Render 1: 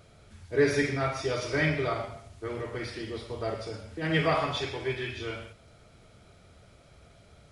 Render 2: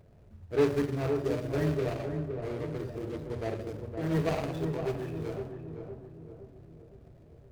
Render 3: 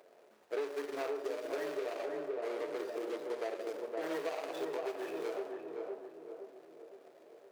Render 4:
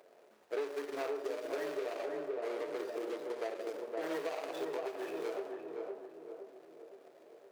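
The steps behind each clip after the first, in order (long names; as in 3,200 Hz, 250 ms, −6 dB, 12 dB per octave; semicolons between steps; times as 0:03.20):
running median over 41 samples; feedback echo with a low-pass in the loop 514 ms, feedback 53%, low-pass 1,000 Hz, level −5 dB
high-pass filter 400 Hz 24 dB per octave; downward compressor 10 to 1, threshold −39 dBFS, peak gain reduction 16.5 dB; level +5 dB
every ending faded ahead of time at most 170 dB per second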